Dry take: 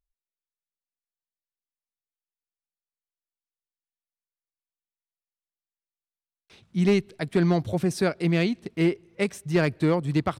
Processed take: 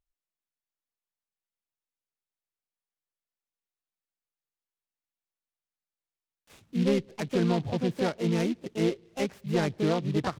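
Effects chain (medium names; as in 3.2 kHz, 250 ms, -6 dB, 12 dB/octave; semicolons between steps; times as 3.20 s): harmony voices +5 st -4 dB; in parallel at -3 dB: peak limiter -19.5 dBFS, peak gain reduction 10 dB; on the sum: low-pass that closes with the level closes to 2.1 kHz, closed at -18.5 dBFS; delay time shaken by noise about 2.9 kHz, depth 0.047 ms; trim -7.5 dB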